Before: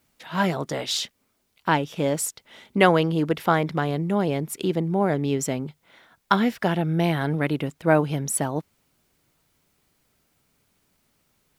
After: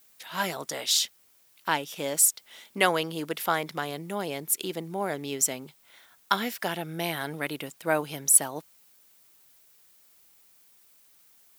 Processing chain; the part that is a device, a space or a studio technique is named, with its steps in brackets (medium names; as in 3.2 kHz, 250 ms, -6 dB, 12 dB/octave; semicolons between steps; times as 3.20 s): turntable without a phono preamp (RIAA curve recording; white noise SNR 36 dB); trim -5 dB